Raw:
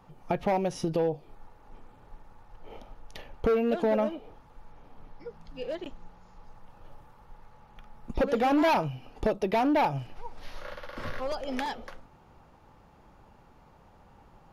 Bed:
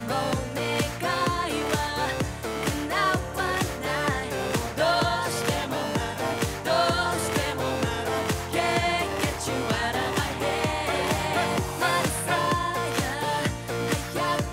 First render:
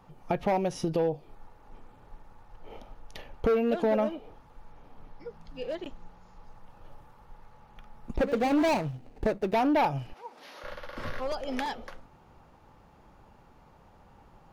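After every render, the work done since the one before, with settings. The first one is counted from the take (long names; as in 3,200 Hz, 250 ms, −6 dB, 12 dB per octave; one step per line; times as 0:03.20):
0:08.16–0:09.54: running median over 41 samples
0:10.13–0:10.64: high-pass filter 230 Hz 24 dB per octave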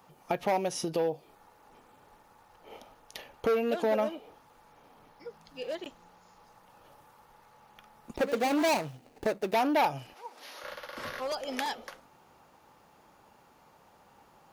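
high-pass filter 350 Hz 6 dB per octave
high-shelf EQ 5,400 Hz +10.5 dB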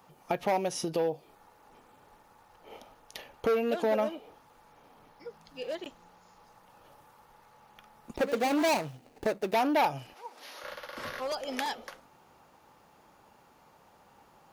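no processing that can be heard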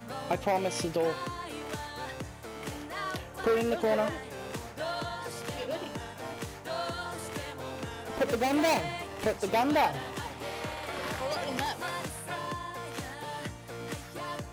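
mix in bed −12 dB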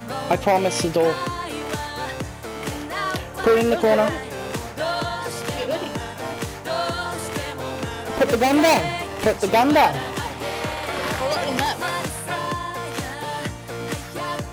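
level +10 dB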